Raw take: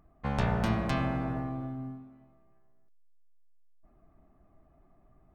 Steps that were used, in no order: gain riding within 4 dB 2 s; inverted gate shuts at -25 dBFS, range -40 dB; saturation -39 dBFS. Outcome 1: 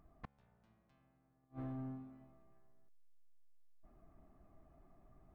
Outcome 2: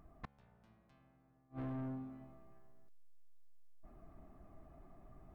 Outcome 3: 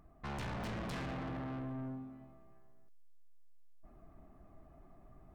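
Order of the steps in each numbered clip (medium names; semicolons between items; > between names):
inverted gate > gain riding > saturation; gain riding > inverted gate > saturation; gain riding > saturation > inverted gate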